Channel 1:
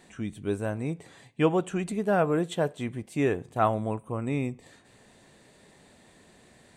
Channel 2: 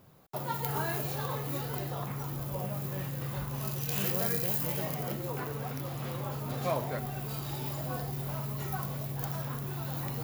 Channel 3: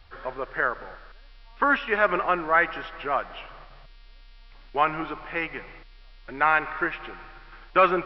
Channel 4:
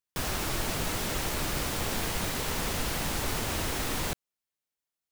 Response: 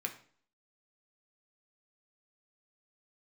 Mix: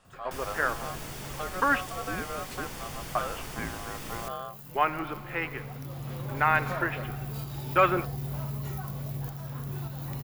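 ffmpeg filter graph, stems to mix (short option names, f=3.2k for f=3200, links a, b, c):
-filter_complex "[0:a]aeval=exprs='val(0)*sin(2*PI*920*n/s)':c=same,volume=-5dB,asplit=2[a][b];[1:a]adelay=50,volume=-2dB[c];[2:a]agate=range=-33dB:threshold=-36dB:ratio=3:detection=peak,volume=-3dB,asplit=3[d][e][f];[d]atrim=end=1.81,asetpts=PTS-STARTPTS,afade=t=out:st=1.806:d=0.004:c=hsin[g];[e]atrim=start=1.81:end=3.15,asetpts=PTS-STARTPTS,volume=0[h];[f]atrim=start=3.15,asetpts=PTS-STARTPTS,afade=t=in:d=0.004:c=hsin[i];[g][h][i]concat=n=3:v=0:a=1[j];[3:a]bandreject=f=4k:w=12,adelay=150,volume=-9dB[k];[b]apad=whole_len=453352[l];[c][l]sidechaincompress=threshold=-51dB:ratio=3:attack=35:release=1370[m];[a][m]amix=inputs=2:normalize=0,lowshelf=f=120:g=11.5,alimiter=limit=-24dB:level=0:latency=1:release=385,volume=0dB[n];[j][k][n]amix=inputs=3:normalize=0"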